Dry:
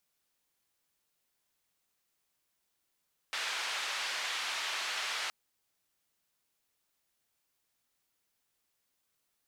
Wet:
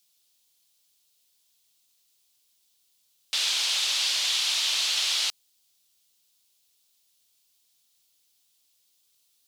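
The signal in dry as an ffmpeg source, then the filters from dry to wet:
-f lavfi -i "anoisesrc=c=white:d=1.97:r=44100:seed=1,highpass=f=950,lowpass=f=3700,volume=-22.5dB"
-af "highshelf=f=2500:t=q:w=1.5:g=11.5"

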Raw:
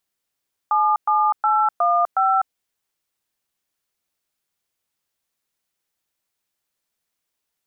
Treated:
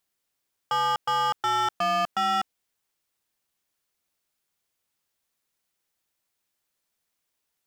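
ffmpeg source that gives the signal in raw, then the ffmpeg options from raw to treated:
-f lavfi -i "aevalsrc='0.133*clip(min(mod(t,0.364),0.25-mod(t,0.364))/0.002,0,1)*(eq(floor(t/0.364),0)*(sin(2*PI*852*mod(t,0.364))+sin(2*PI*1209*mod(t,0.364)))+eq(floor(t/0.364),1)*(sin(2*PI*852*mod(t,0.364))+sin(2*PI*1209*mod(t,0.364)))+eq(floor(t/0.364),2)*(sin(2*PI*852*mod(t,0.364))+sin(2*PI*1336*mod(t,0.364)))+eq(floor(t/0.364),3)*(sin(2*PI*697*mod(t,0.364))+sin(2*PI*1209*mod(t,0.364)))+eq(floor(t/0.364),4)*(sin(2*PI*770*mod(t,0.364))+sin(2*PI*1336*mod(t,0.364))))':d=1.82:s=44100"
-af "asoftclip=type=hard:threshold=0.075"

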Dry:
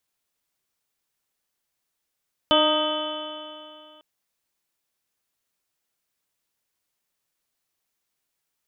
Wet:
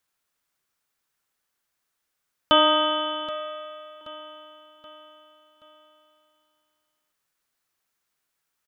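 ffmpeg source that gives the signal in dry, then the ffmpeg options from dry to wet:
-f lavfi -i "aevalsrc='0.0668*pow(10,-3*t/2.57)*sin(2*PI*304.43*t)+0.119*pow(10,-3*t/2.57)*sin(2*PI*611.4*t)+0.0631*pow(10,-3*t/2.57)*sin(2*PI*923.42*t)+0.075*pow(10,-3*t/2.57)*sin(2*PI*1242.94*t)+0.0211*pow(10,-3*t/2.57)*sin(2*PI*1572.3*t)+0.0075*pow(10,-3*t/2.57)*sin(2*PI*1913.72*t)+0.0075*pow(10,-3*t/2.57)*sin(2*PI*2269.29*t)+0.0119*pow(10,-3*t/2.57)*sin(2*PI*2640.93*t)+0.112*pow(10,-3*t/2.57)*sin(2*PI*3030.42*t)+0.0501*pow(10,-3*t/2.57)*sin(2*PI*3439.37*t)':d=1.5:s=44100"
-af "equalizer=f=1400:t=o:w=0.95:g=6,aecho=1:1:777|1554|2331|3108:0.158|0.0729|0.0335|0.0154"

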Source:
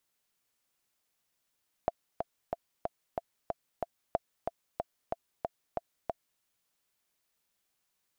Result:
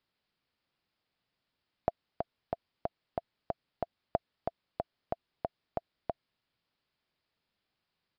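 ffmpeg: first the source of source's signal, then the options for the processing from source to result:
-f lavfi -i "aevalsrc='pow(10,(-14-5*gte(mod(t,7*60/185),60/185))/20)*sin(2*PI*679*mod(t,60/185))*exp(-6.91*mod(t,60/185)/0.03)':d=4.54:s=44100"
-af "equalizer=f=120:w=0.44:g=6,aresample=11025,aresample=44100"

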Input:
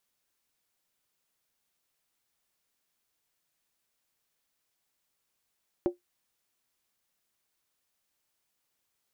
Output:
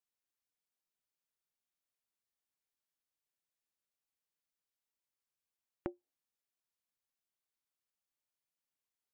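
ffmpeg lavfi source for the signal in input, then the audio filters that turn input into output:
-f lavfi -i "aevalsrc='0.112*pow(10,-3*t/0.14)*sin(2*PI*354*t)+0.0398*pow(10,-3*t/0.111)*sin(2*PI*564.3*t)+0.0141*pow(10,-3*t/0.096)*sin(2*PI*756.1*t)+0.00501*pow(10,-3*t/0.092)*sin(2*PI*812.8*t)+0.00178*pow(10,-3*t/0.086)*sin(2*PI*939.2*t)':d=0.63:s=44100"
-af "afftdn=nr=15:nf=-61,acompressor=threshold=0.0141:ratio=6"

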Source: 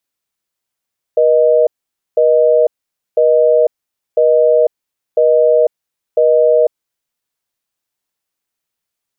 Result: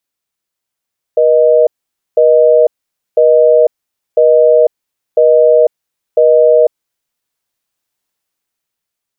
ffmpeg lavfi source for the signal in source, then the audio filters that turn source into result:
-f lavfi -i "aevalsrc='0.316*(sin(2*PI*480*t)+sin(2*PI*620*t))*clip(min(mod(t,1),0.5-mod(t,1))/0.005,0,1)':d=5.57:s=44100"
-af "dynaudnorm=f=220:g=11:m=2.99"

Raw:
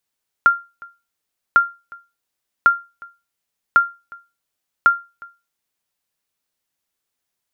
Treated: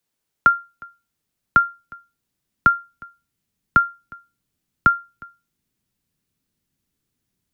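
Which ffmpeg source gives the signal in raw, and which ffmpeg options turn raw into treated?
-f lavfi -i "aevalsrc='0.631*(sin(2*PI*1390*mod(t,1.1))*exp(-6.91*mod(t,1.1)/0.27)+0.0562*sin(2*PI*1390*max(mod(t,1.1)-0.36,0))*exp(-6.91*max(mod(t,1.1)-0.36,0)/0.27))':d=5.5:s=44100"
-filter_complex "[0:a]asubboost=boost=6:cutoff=240,acrossover=split=110|470|680[s0][s1][s2][s3];[s1]acontrast=81[s4];[s0][s4][s2][s3]amix=inputs=4:normalize=0"

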